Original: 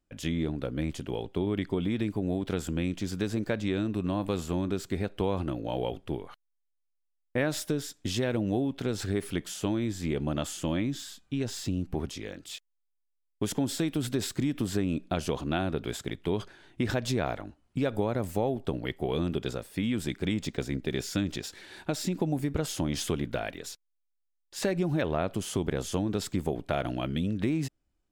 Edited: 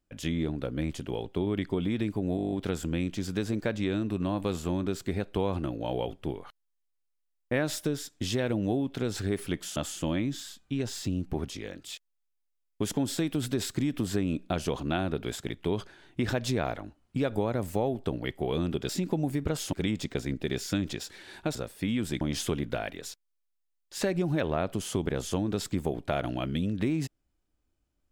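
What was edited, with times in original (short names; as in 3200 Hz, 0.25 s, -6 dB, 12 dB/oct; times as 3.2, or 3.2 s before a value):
2.36 stutter 0.02 s, 9 plays
9.6–10.37 cut
19.5–20.16 swap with 21.98–22.82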